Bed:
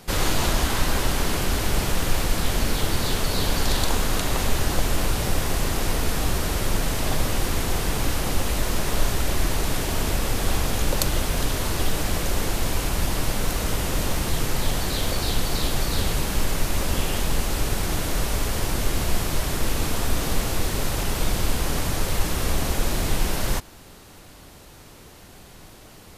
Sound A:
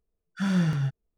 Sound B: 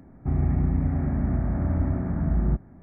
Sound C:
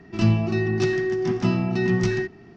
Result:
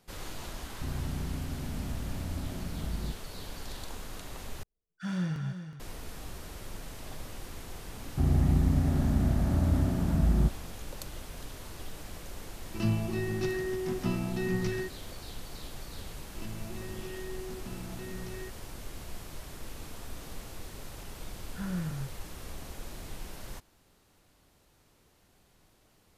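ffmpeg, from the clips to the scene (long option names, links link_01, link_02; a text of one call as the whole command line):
ffmpeg -i bed.wav -i cue0.wav -i cue1.wav -i cue2.wav -filter_complex "[2:a]asplit=2[link_01][link_02];[1:a]asplit=2[link_03][link_04];[3:a]asplit=2[link_05][link_06];[0:a]volume=-19dB[link_07];[link_03]aecho=1:1:369:0.299[link_08];[link_06]acompressor=threshold=-21dB:ratio=6:attack=3.2:release=140:knee=1:detection=peak[link_09];[link_04]lowpass=2200[link_10];[link_07]asplit=2[link_11][link_12];[link_11]atrim=end=4.634[link_13];[link_08]atrim=end=1.17,asetpts=PTS-STARTPTS,volume=-8dB[link_14];[link_12]atrim=start=5.796[link_15];[link_01]atrim=end=2.82,asetpts=PTS-STARTPTS,volume=-12.5dB,afade=type=in:duration=0.004:curve=hsin,afade=type=out:start_time=2.816:duration=0.004:curve=hsin,adelay=560[link_16];[link_02]atrim=end=2.82,asetpts=PTS-STARTPTS,volume=-1.5dB,afade=type=in:duration=0.004:curve=hsin,afade=type=out:start_time=2.816:duration=0.004:curve=hsin,adelay=7920[link_17];[link_05]atrim=end=2.56,asetpts=PTS-STARTPTS,volume=-9.5dB,afade=type=in:duration=0.004:curve=hsin,afade=type=out:start_time=2.556:duration=0.004:curve=hsin,adelay=12610[link_18];[link_09]atrim=end=2.56,asetpts=PTS-STARTPTS,volume=-17dB,afade=type=in:duration=0.004:curve=hsin,afade=type=out:start_time=2.556:duration=0.004:curve=hsin,adelay=16230[link_19];[link_10]atrim=end=1.17,asetpts=PTS-STARTPTS,volume=-10.5dB,afade=type=in:duration=0.004:curve=hsin,afade=type=out:start_time=1.166:duration=0.004:curve=hsin,adelay=21180[link_20];[link_13][link_14]acrossfade=duration=0.004:curve1=hsin:curve2=hsin[link_21];[link_21][link_15]acrossfade=duration=0.004:curve1=hsin:curve2=hsin[link_22];[link_22][link_16][link_17][link_18][link_19][link_20]amix=inputs=6:normalize=0" out.wav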